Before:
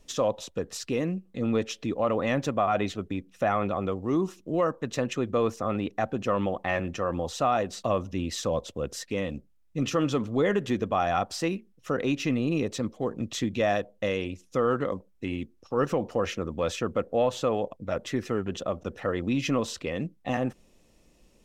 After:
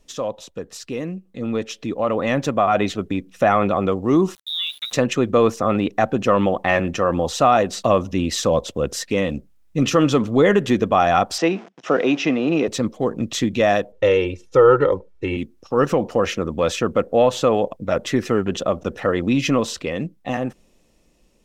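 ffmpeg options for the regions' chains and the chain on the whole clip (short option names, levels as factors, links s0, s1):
-filter_complex "[0:a]asettb=1/sr,asplit=3[s0][s1][s2];[s0]atrim=end=4.354[s3];[s1]atrim=start=4.35:end=4.93,asetpts=PTS-STARTPTS,afade=t=in:d=0.004:c=qsin,afade=t=out:st=0.576:d=0.004:c=qsin,lowpass=f=3400:t=q:w=0.5098,lowpass=f=3400:t=q:w=0.6013,lowpass=f=3400:t=q:w=0.9,lowpass=f=3400:t=q:w=2.563,afreqshift=-4000,acompressor=threshold=0.0178:ratio=3:attack=3.2:release=140:knee=1:detection=peak,aeval=exprs='val(0)*gte(abs(val(0)),0.00299)':c=same[s4];[s2]atrim=start=4.926[s5];[s3][s4]acrossfade=d=0.004:c1=hsin:c2=qsin[s6];[s6][s5]acrossfade=d=0.004:c1=qsin:c2=hsin,asettb=1/sr,asplit=3[s7][s8][s9];[s7]atrim=end=11.384[s10];[s8]atrim=start=11.38:end=12.68,asetpts=PTS-STARTPTS,afade=t=in:d=0.004:c=qsin,afade=t=out:st=1.296:d=0.004:c=qsin,aeval=exprs='val(0)+0.5*0.00708*sgn(val(0))':c=same,highpass=f=180:w=0.5412,highpass=f=180:w=1.3066,equalizer=f=220:t=q:w=4:g=-6,equalizer=f=700:t=q:w=4:g=7,equalizer=f=4300:t=q:w=4:g=-7,lowpass=f=5600:w=0.5412,lowpass=f=5600:w=1.3066[s11];[s9]atrim=start=12.676[s12];[s10][s11]acrossfade=d=0.004:c1=hsin:c2=qsin[s13];[s13][s12]acrossfade=d=0.004:c1=qsin:c2=hsin,asettb=1/sr,asplit=3[s14][s15][s16];[s14]atrim=end=13.924[s17];[s15]atrim=start=13.92:end=15.37,asetpts=PTS-STARTPTS,afade=t=in:d=0.004:c=qsin,afade=t=out:st=1.446:d=0.004:c=qsin,aemphasis=mode=reproduction:type=50fm,aecho=1:1:2.2:0.97,atrim=end_sample=63945[s18];[s16]atrim=start=15.366[s19];[s17][s18]acrossfade=d=0.004:c1=hsin:c2=qsin[s20];[s20][s19]acrossfade=d=0.004:c1=qsin:c2=hsin,equalizer=f=93:t=o:w=0.64:g=-3.5,dynaudnorm=f=420:g=11:m=3.35"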